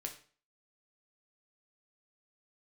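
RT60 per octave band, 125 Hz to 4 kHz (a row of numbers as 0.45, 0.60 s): 0.45, 0.45, 0.45, 0.40, 0.40, 0.40 s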